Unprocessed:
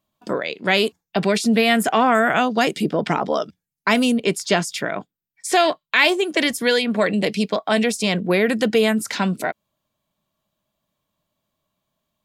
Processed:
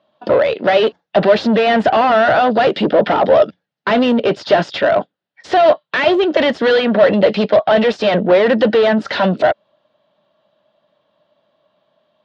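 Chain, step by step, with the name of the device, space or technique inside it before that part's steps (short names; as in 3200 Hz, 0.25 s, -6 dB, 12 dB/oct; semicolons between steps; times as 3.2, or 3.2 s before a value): overdrive pedal into a guitar cabinet (overdrive pedal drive 29 dB, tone 2000 Hz, clips at -1.5 dBFS; speaker cabinet 89–4100 Hz, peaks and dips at 580 Hz +8 dB, 1100 Hz -5 dB, 2300 Hz -8 dB); gain -3.5 dB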